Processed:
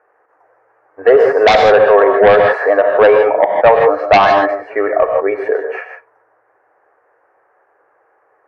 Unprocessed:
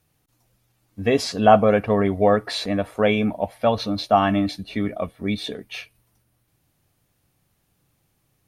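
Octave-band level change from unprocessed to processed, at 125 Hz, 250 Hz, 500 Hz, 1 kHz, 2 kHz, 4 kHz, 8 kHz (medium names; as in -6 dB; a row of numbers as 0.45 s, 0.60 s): -5.5 dB, -2.5 dB, +12.5 dB, +9.5 dB, +13.5 dB, +4.0 dB, no reading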